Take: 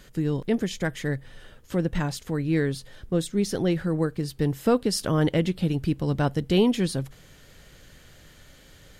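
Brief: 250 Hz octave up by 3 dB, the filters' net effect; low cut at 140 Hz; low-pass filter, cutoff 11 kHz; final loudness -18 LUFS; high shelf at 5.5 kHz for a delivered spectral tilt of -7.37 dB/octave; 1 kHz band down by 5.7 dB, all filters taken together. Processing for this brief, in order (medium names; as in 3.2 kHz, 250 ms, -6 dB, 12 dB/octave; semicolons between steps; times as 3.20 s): high-pass 140 Hz; low-pass 11 kHz; peaking EQ 250 Hz +5.5 dB; peaking EQ 1 kHz -8.5 dB; treble shelf 5.5 kHz -8 dB; trim +6.5 dB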